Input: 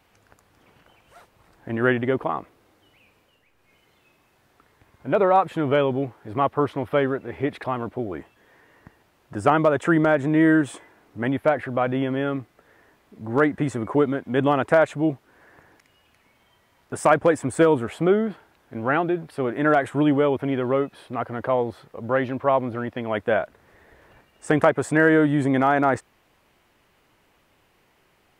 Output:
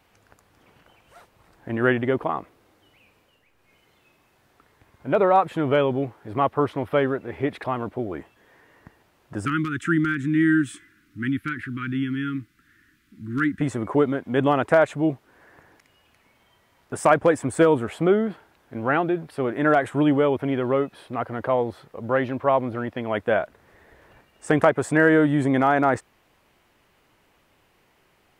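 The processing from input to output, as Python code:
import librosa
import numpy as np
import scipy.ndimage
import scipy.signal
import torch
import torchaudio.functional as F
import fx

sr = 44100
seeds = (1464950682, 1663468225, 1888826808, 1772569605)

y = fx.ellip_bandstop(x, sr, low_hz=310.0, high_hz=1400.0, order=3, stop_db=60, at=(9.45, 13.61))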